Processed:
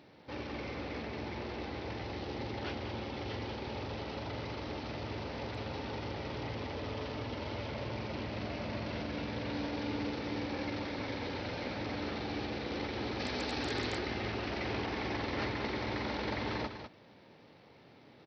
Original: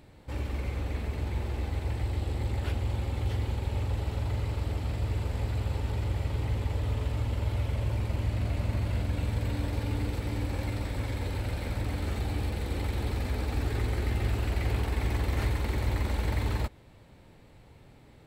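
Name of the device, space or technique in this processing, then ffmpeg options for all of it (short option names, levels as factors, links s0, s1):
Bluetooth headset: -filter_complex "[0:a]asettb=1/sr,asplit=3[s0][s1][s2];[s0]atrim=end=13.194[s3];[s1]atrim=start=13.19:end=13.98,asetpts=PTS-STARTPTS,afade=t=in:d=0.004:c=qsin,afade=t=out:st=0.786:d=0.004:c=qsin,aemphasis=mode=production:type=75kf[s4];[s2]atrim=start=13.976[s5];[s3][s4]acrossfade=d=0.004:c1=hsin:c2=qsin[s6];[s6][s5]acrossfade=d=0.004:c1=qsin:c2=hsin,highpass=200,aecho=1:1:199:0.376,aresample=16000,aresample=44100" -ar 44100 -c:a sbc -b:a 64k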